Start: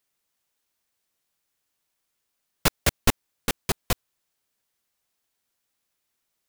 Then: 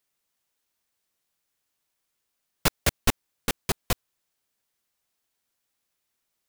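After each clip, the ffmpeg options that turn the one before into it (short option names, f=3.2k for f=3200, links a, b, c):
-af "asoftclip=type=hard:threshold=-11dB,volume=-1dB"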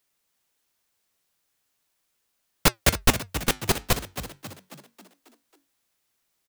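-filter_complex "[0:a]flanger=delay=2.7:depth=8.3:regen=-81:speed=0.4:shape=triangular,asplit=2[a][b];[b]asplit=6[c][d][e][f][g][h];[c]adelay=271,afreqshift=46,volume=-11.5dB[i];[d]adelay=542,afreqshift=92,volume=-17.2dB[j];[e]adelay=813,afreqshift=138,volume=-22.9dB[k];[f]adelay=1084,afreqshift=184,volume=-28.5dB[l];[g]adelay=1355,afreqshift=230,volume=-34.2dB[m];[h]adelay=1626,afreqshift=276,volume=-39.9dB[n];[i][j][k][l][m][n]amix=inputs=6:normalize=0[o];[a][o]amix=inputs=2:normalize=0,volume=8.5dB"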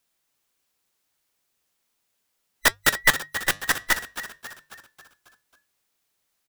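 -af "afftfilt=real='real(if(between(b,1,1012),(2*floor((b-1)/92)+1)*92-b,b),0)':imag='imag(if(between(b,1,1012),(2*floor((b-1)/92)+1)*92-b,b),0)*if(between(b,1,1012),-1,1)':win_size=2048:overlap=0.75,bandreject=f=50:t=h:w=6,bandreject=f=100:t=h:w=6,bandreject=f=150:t=h:w=6"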